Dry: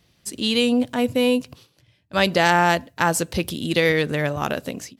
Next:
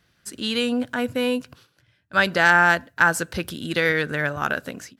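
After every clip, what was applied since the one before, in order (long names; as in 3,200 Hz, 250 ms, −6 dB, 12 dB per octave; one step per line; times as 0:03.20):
parametric band 1,500 Hz +14 dB 0.54 octaves
level −4.5 dB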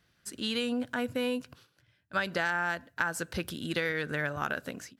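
downward compressor 6 to 1, threshold −21 dBFS, peak gain reduction 10 dB
level −5.5 dB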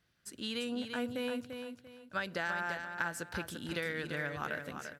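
repeating echo 343 ms, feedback 29%, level −7 dB
level −6 dB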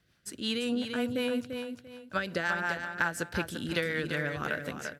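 rotating-speaker cabinet horn 5.5 Hz
level +8 dB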